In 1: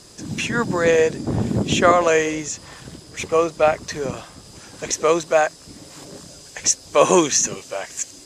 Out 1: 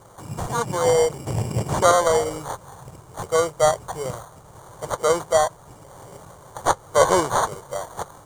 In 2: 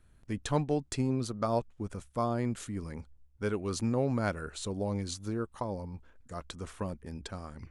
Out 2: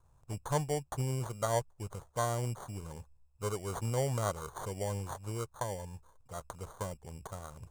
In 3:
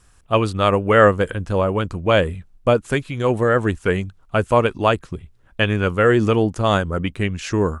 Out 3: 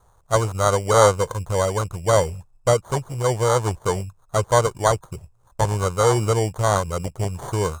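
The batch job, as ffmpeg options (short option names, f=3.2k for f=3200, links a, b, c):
-filter_complex "[0:a]acrusher=samples=17:mix=1:aa=0.000001,equalizer=f=125:t=o:w=1:g=8,equalizer=f=250:t=o:w=1:g=-11,equalizer=f=500:t=o:w=1:g=5,equalizer=f=1k:t=o:w=1:g=8,equalizer=f=2k:t=o:w=1:g=-6,equalizer=f=4k:t=o:w=1:g=-5,equalizer=f=8k:t=o:w=1:g=11,acrossover=split=8500[a][b];[b]acompressor=threshold=-35dB:ratio=4:attack=1:release=60[c];[a][c]amix=inputs=2:normalize=0,volume=-5.5dB"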